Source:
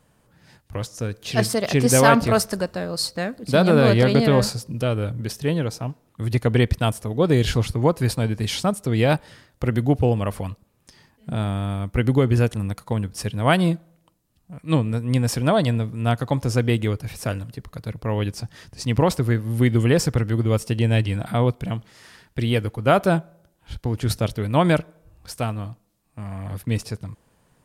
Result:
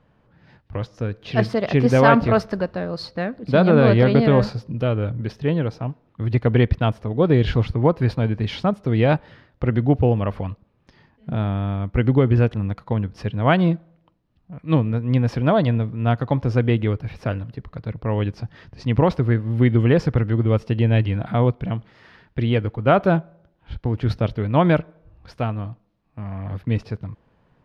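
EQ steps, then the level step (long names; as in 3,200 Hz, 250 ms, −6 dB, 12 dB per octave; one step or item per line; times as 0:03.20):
high-frequency loss of the air 290 metres
+2.0 dB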